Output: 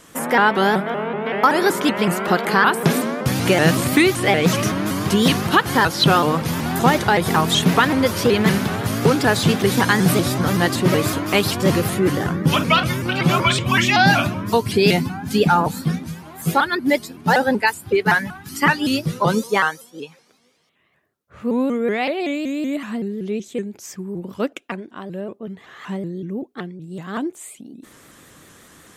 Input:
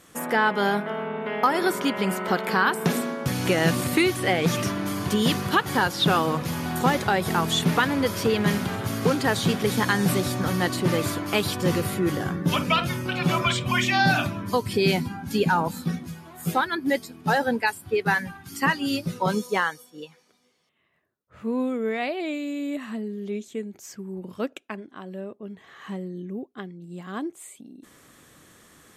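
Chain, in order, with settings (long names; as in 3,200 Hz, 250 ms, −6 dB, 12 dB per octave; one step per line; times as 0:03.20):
pitch modulation by a square or saw wave saw up 5.3 Hz, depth 160 cents
level +6 dB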